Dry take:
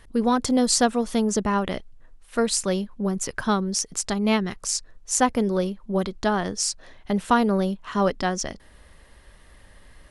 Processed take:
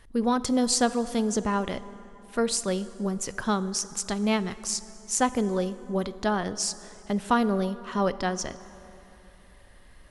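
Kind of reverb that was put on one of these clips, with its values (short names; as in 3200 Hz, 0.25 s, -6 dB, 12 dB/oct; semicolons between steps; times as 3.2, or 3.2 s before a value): plate-style reverb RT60 3.3 s, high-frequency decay 0.55×, pre-delay 0 ms, DRR 14.5 dB; gain -3.5 dB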